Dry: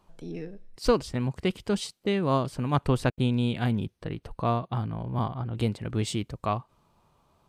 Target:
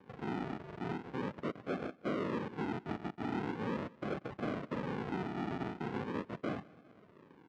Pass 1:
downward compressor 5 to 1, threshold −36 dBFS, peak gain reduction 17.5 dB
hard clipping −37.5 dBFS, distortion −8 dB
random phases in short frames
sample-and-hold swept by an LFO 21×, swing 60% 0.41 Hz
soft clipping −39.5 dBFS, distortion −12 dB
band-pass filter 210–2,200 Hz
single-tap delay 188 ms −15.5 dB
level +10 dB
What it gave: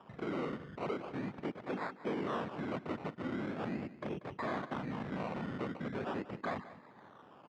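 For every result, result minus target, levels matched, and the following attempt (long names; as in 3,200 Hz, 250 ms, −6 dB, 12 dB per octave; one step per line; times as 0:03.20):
hard clipping: distortion +12 dB; sample-and-hold swept by an LFO: distortion −10 dB; echo-to-direct +7 dB
downward compressor 5 to 1, threshold −36 dBFS, peak gain reduction 17.5 dB
hard clipping −29.5 dBFS, distortion −20 dB
random phases in short frames
sample-and-hold swept by an LFO 21×, swing 60% 0.41 Hz
soft clipping −39.5 dBFS, distortion −9 dB
band-pass filter 210–2,200 Hz
single-tap delay 188 ms −15.5 dB
level +10 dB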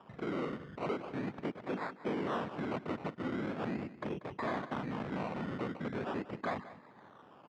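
sample-and-hold swept by an LFO: distortion −10 dB; echo-to-direct +7 dB
downward compressor 5 to 1, threshold −36 dBFS, peak gain reduction 17.5 dB
hard clipping −29.5 dBFS, distortion −20 dB
random phases in short frames
sample-and-hold swept by an LFO 65×, swing 60% 0.41 Hz
soft clipping −39.5 dBFS, distortion −9 dB
band-pass filter 210–2,200 Hz
single-tap delay 188 ms −15.5 dB
level +10 dB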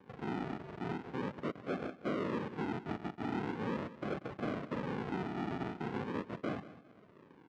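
echo-to-direct +7 dB
downward compressor 5 to 1, threshold −36 dBFS, peak gain reduction 17.5 dB
hard clipping −29.5 dBFS, distortion −20 dB
random phases in short frames
sample-and-hold swept by an LFO 65×, swing 60% 0.41 Hz
soft clipping −39.5 dBFS, distortion −9 dB
band-pass filter 210–2,200 Hz
single-tap delay 188 ms −22.5 dB
level +10 dB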